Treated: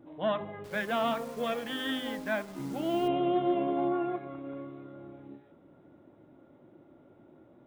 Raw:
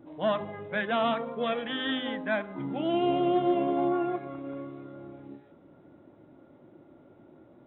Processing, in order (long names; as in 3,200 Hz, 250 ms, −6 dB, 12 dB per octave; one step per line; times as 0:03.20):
0:00.64–0:03.08: hold until the input has moved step −42 dBFS
level −2.5 dB